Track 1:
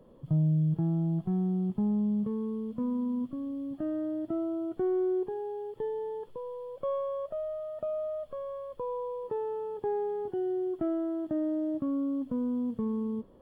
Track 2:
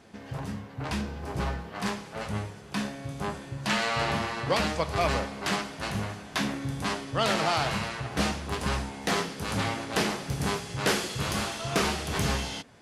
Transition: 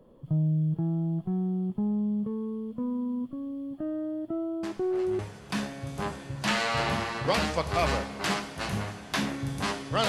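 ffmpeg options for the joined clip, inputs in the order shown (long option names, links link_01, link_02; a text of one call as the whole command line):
ffmpeg -i cue0.wav -i cue1.wav -filter_complex "[1:a]asplit=2[link_01][link_02];[0:a]apad=whole_dur=10.08,atrim=end=10.08,atrim=end=5.192[link_03];[link_02]atrim=start=2.408:end=7.3[link_04];[link_01]atrim=start=1.85:end=2.41,asetpts=PTS-STARTPTS,volume=-10.5dB,afade=type=in:duration=0.004:curve=hsin,afade=type=out:start_time=0.556:duration=0.004:curve=hsin,adelay=4630[link_05];[link_03][link_04]acrossfade=duration=0.004:curve1=hsin:curve2=hsin[link_06];[link_06][link_05]amix=inputs=2:normalize=0" out.wav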